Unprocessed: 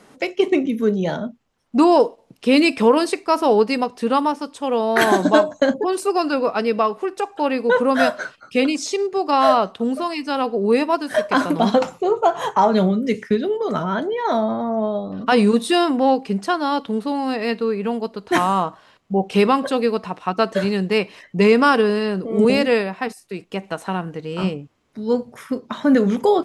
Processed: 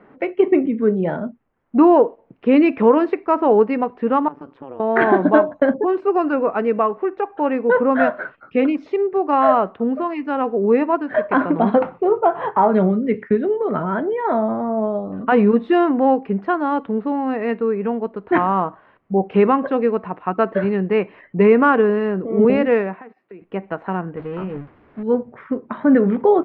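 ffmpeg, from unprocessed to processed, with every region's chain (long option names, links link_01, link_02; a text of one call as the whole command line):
ffmpeg -i in.wav -filter_complex "[0:a]asettb=1/sr,asplit=3[link_01][link_02][link_03];[link_01]atrim=end=4.284[link_04];[link_02]atrim=start=4.28:end=4.8,asetpts=PTS-STARTPTS,afade=type=in:duration=0.004:curve=qsin,afade=type=out:start_time=0.516:duration=0.004:curve=qsin,acompressor=threshold=-28dB:ratio=12:attack=3.2:release=140:knee=1:detection=peak,tremolo=f=130:d=0.857[link_05];[link_03]atrim=start=4.796[link_06];[link_04][link_05]acrossfade=duration=0.004:curve1=hsin:curve2=qsin[link_07];[link_07][link_06]acrossfade=duration=0.004:curve1=qsin:curve2=hsin,asettb=1/sr,asplit=3[link_08][link_09][link_10];[link_08]atrim=end=22.964[link_11];[link_09]atrim=start=22.96:end=23.42,asetpts=PTS-STARTPTS,afade=type=in:duration=0.004:curve=qsin,afade=type=out:start_time=0.456:duration=0.004:curve=qsin,highpass=190,lowpass=3600,acompressor=threshold=-38dB:ratio=4:attack=3.2:release=140:knee=1:detection=peak[link_12];[link_10]atrim=start=23.416[link_13];[link_11][link_12]acrossfade=duration=0.004:curve1=hsin:curve2=qsin[link_14];[link_14][link_13]acrossfade=duration=0.004:curve1=qsin:curve2=hsin,asettb=1/sr,asplit=3[link_15][link_16][link_17];[link_15]atrim=end=24.164[link_18];[link_16]atrim=start=24.16:end=25.03,asetpts=PTS-STARTPTS,afade=type=in:duration=0.004:curve=qsin,afade=type=out:start_time=0.866:duration=0.004:curve=qsin,aeval=exprs='val(0)+0.5*0.0398*sgn(val(0))':channel_layout=same,agate=range=-33dB:threshold=-25dB:ratio=3:release=100:detection=peak,acompressor=threshold=-25dB:ratio=4:attack=3.2:release=140:knee=1:detection=peak[link_19];[link_17]atrim=start=25.026[link_20];[link_18][link_19]acrossfade=duration=0.004:curve1=hsin:curve2=qsin[link_21];[link_21][link_20]acrossfade=duration=0.004:curve1=qsin:curve2=hsin,lowpass=frequency=2100:width=0.5412,lowpass=frequency=2100:width=1.3066,equalizer=frequency=350:width_type=o:width=0.77:gain=3" out.wav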